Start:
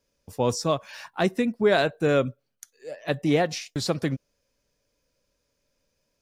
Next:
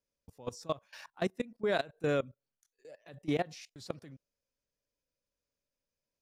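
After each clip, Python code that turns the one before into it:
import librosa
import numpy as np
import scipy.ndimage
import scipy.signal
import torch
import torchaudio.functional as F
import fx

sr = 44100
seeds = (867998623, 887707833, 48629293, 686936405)

y = fx.level_steps(x, sr, step_db=21)
y = y * librosa.db_to_amplitude(-7.5)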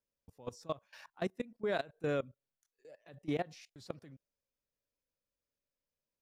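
y = fx.peak_eq(x, sr, hz=7800.0, db=-3.5, octaves=2.3)
y = y * librosa.db_to_amplitude(-3.5)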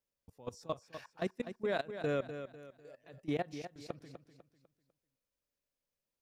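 y = fx.echo_feedback(x, sr, ms=249, feedback_pct=36, wet_db=-10.0)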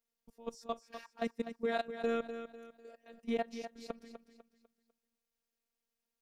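y = fx.robotise(x, sr, hz=231.0)
y = y * librosa.db_to_amplitude(2.5)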